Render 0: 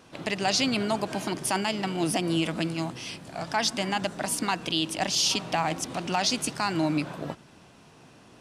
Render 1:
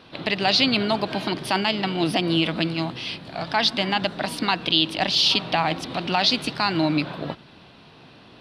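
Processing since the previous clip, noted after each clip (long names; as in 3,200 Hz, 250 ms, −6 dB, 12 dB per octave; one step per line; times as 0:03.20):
high shelf with overshoot 5,300 Hz −10 dB, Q 3
level +4 dB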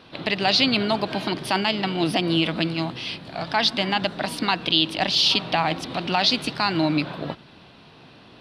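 no processing that can be heard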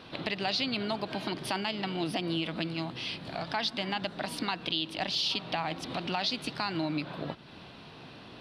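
downward compressor 2 to 1, threshold −37 dBFS, peak gain reduction 12.5 dB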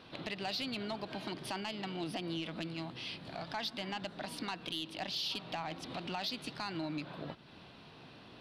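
soft clipping −22 dBFS, distortion −19 dB
level −6 dB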